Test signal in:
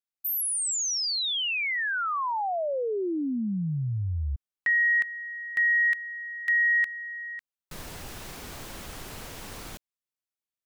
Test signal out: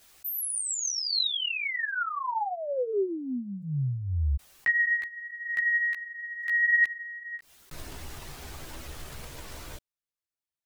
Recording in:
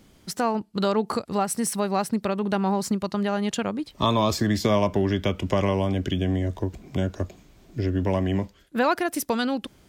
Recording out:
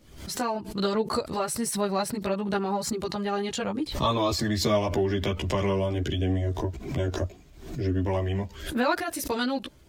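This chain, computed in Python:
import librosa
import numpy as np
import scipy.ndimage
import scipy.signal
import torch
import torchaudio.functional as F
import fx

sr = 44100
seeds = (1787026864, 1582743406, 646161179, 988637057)

y = fx.chorus_voices(x, sr, voices=6, hz=0.61, base_ms=14, depth_ms=1.8, mix_pct=55)
y = fx.dynamic_eq(y, sr, hz=4100.0, q=7.2, threshold_db=-56.0, ratio=4.0, max_db=6)
y = fx.pre_swell(y, sr, db_per_s=84.0)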